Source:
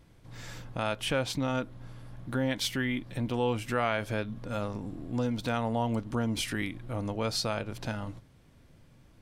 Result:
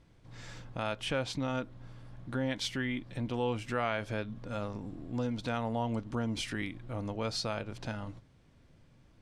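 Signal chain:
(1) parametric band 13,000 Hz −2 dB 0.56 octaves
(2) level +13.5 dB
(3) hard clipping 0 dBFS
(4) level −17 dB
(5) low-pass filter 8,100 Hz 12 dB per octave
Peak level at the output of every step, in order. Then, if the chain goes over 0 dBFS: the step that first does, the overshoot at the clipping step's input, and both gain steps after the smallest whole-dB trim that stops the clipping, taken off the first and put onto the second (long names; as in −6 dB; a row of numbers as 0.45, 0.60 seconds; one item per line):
−15.5, −2.0, −2.0, −19.0, −19.0 dBFS
no step passes full scale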